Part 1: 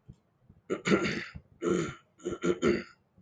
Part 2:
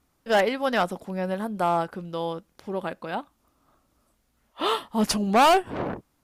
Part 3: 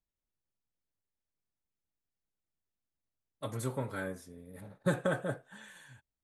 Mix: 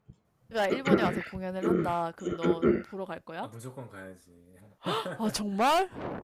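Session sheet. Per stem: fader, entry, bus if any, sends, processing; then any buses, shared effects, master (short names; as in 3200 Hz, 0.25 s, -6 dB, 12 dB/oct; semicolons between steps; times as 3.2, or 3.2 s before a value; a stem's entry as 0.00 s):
-1.5 dB, 0.00 s, no send, treble ducked by the level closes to 1300 Hz, closed at -26.5 dBFS
-11.0 dB, 0.25 s, no send, dry
-10.5 dB, 0.00 s, no send, dry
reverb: off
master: AGC gain up to 4 dB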